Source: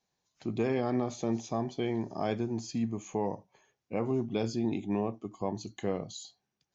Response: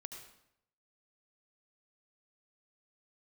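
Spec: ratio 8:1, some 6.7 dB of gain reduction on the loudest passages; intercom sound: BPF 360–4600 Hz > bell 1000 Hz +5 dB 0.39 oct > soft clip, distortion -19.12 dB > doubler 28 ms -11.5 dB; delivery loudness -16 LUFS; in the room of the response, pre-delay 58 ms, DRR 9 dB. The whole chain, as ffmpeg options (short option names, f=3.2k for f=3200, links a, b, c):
-filter_complex "[0:a]acompressor=threshold=-32dB:ratio=8,asplit=2[a][b];[1:a]atrim=start_sample=2205,adelay=58[c];[b][c]afir=irnorm=-1:irlink=0,volume=-5dB[d];[a][d]amix=inputs=2:normalize=0,highpass=360,lowpass=4.6k,equalizer=f=1k:t=o:w=0.39:g=5,asoftclip=threshold=-28.5dB,asplit=2[e][f];[f]adelay=28,volume=-11.5dB[g];[e][g]amix=inputs=2:normalize=0,volume=26.5dB"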